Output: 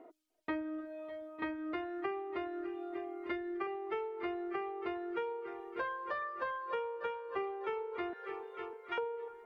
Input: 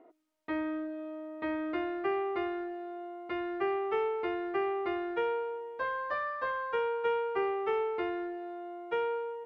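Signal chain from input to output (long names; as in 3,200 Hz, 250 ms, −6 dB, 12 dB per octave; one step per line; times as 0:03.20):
0:02.93–0:03.67: comb filter 3.4 ms, depth 52%
0:08.13–0:08.98: high-pass filter 1,100 Hz 24 dB per octave
echo machine with several playback heads 301 ms, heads all three, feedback 40%, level −17 dB
downward compressor 6 to 1, threshold −36 dBFS, peak gain reduction 10 dB
reverb reduction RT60 1.3 s
level +3 dB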